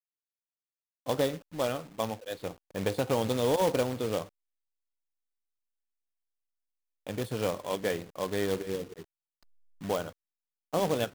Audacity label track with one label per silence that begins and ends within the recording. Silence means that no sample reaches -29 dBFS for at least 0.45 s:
4.220000	7.090000	silence
8.760000	9.900000	silence
10.020000	10.740000	silence